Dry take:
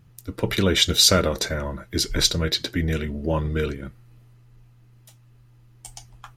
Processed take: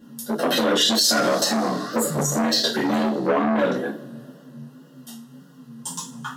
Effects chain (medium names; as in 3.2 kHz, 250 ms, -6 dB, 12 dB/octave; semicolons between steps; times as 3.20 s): 1.55–2.34 s: spectral replace 970–6100 Hz after; 3.30–3.71 s: treble shelf 5 kHz -9 dB; in parallel at -3 dB: compression, threshold -29 dBFS, peak gain reduction 16.5 dB; on the sum: frequency shift +130 Hz; wow and flutter 140 cents; Butterworth band-stop 2.3 kHz, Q 2.7; two-slope reverb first 0.32 s, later 2.4 s, from -27 dB, DRR -9 dB; loudness maximiser +5.5 dB; transformer saturation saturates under 740 Hz; trim -8 dB